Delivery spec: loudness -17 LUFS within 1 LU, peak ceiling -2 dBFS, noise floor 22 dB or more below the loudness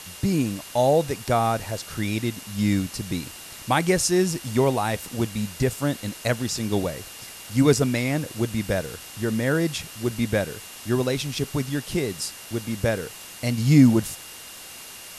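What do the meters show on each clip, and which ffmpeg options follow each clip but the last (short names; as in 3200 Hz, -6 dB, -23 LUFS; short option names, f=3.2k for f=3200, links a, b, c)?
steady tone 2800 Hz; tone level -48 dBFS; noise floor -41 dBFS; noise floor target -46 dBFS; loudness -24.0 LUFS; peak -4.5 dBFS; loudness target -17.0 LUFS
-> -af "bandreject=f=2.8k:w=30"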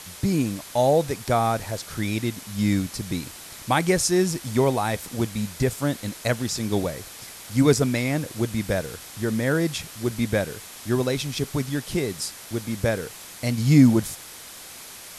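steady tone none; noise floor -42 dBFS; noise floor target -46 dBFS
-> -af "afftdn=nr=6:nf=-42"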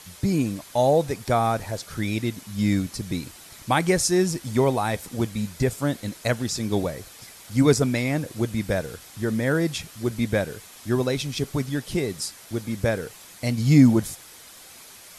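noise floor -46 dBFS; noise floor target -47 dBFS
-> -af "afftdn=nr=6:nf=-46"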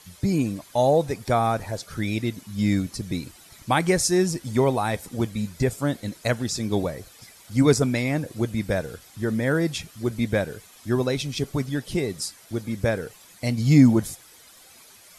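noise floor -51 dBFS; loudness -24.5 LUFS; peak -4.5 dBFS; loudness target -17.0 LUFS
-> -af "volume=7.5dB,alimiter=limit=-2dB:level=0:latency=1"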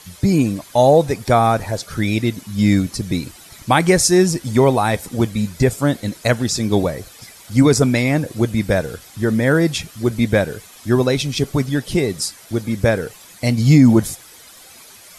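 loudness -17.5 LUFS; peak -2.0 dBFS; noise floor -43 dBFS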